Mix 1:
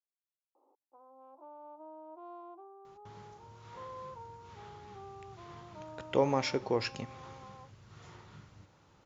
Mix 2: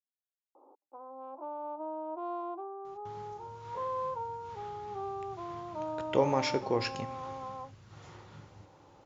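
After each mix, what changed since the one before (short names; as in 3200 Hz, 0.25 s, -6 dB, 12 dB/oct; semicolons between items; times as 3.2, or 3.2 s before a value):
speech: send +8.5 dB; background +11.0 dB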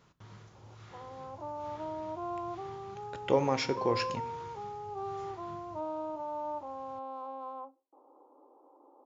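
speech: entry -2.85 s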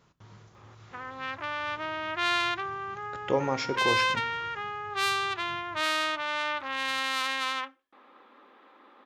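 background: remove elliptic band-pass 290–920 Hz, stop band 40 dB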